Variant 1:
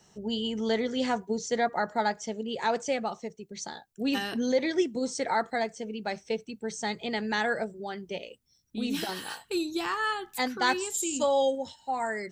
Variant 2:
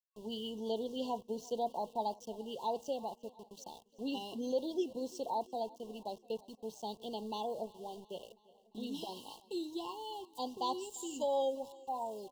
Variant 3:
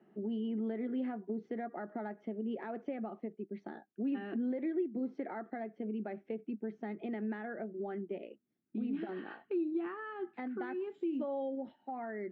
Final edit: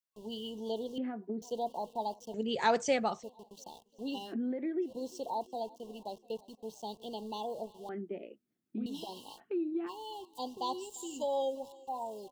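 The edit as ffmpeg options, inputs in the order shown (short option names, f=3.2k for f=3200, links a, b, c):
-filter_complex "[2:a]asplit=4[a][b][c][d];[1:a]asplit=6[e][f][g][h][i][j];[e]atrim=end=0.982[k];[a]atrim=start=0.978:end=1.422[l];[f]atrim=start=1.418:end=2.342[m];[0:a]atrim=start=2.338:end=3.232[n];[g]atrim=start=3.228:end=4.35[o];[b]atrim=start=4.25:end=4.91[p];[h]atrim=start=4.81:end=7.892[q];[c]atrim=start=7.888:end=8.862[r];[i]atrim=start=8.858:end=9.41[s];[d]atrim=start=9.37:end=9.9[t];[j]atrim=start=9.86[u];[k][l]acrossfade=d=0.004:c1=hsin:c2=hsin[v];[v][m]acrossfade=d=0.004:c1=hsin:c2=hsin[w];[w][n]acrossfade=d=0.004:c1=hsin:c2=hsin[x];[x][o]acrossfade=d=0.004:c1=hsin:c2=hsin[y];[y][p]acrossfade=d=0.1:c1=tri:c2=tri[z];[z][q]acrossfade=d=0.1:c1=tri:c2=tri[aa];[aa][r]acrossfade=d=0.004:c1=hsin:c2=hsin[ab];[ab][s]acrossfade=d=0.004:c1=hsin:c2=hsin[ac];[ac][t]acrossfade=d=0.04:c1=tri:c2=tri[ad];[ad][u]acrossfade=d=0.04:c1=tri:c2=tri"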